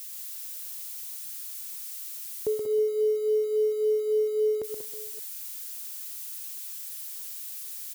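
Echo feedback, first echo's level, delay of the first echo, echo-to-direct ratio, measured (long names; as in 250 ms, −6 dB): repeats not evenly spaced, −5.5 dB, 126 ms, −3.0 dB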